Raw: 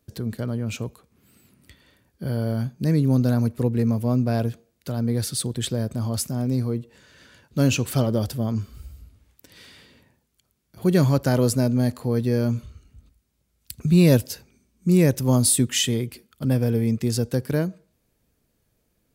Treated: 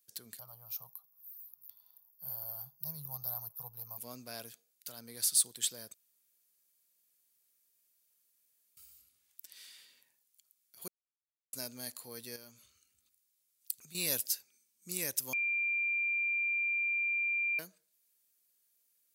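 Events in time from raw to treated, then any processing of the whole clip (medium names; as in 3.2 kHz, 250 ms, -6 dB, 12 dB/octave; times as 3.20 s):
0.39–3.98 s: FFT filter 100 Hz 0 dB, 150 Hz +7 dB, 240 Hz -25 dB, 470 Hz -14 dB, 760 Hz +6 dB, 1.2 kHz +1 dB, 1.8 kHz -25 dB, 5.5 kHz -5 dB, 8 kHz -27 dB, 13 kHz +11 dB
5.94–8.77 s: room tone
10.88–11.53 s: mute
12.36–13.95 s: compression 2:1, threshold -33 dBFS
15.33–17.59 s: bleep 2.38 kHz -20 dBFS
whole clip: differentiator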